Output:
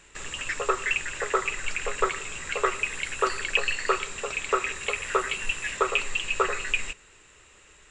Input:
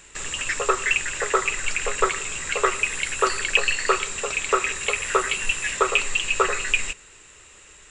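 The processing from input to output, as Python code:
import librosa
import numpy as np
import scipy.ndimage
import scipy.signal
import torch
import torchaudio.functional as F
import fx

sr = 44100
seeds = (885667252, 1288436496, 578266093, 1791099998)

y = fx.high_shelf(x, sr, hz=6000.0, db=-8.5)
y = F.gain(torch.from_numpy(y), -3.5).numpy()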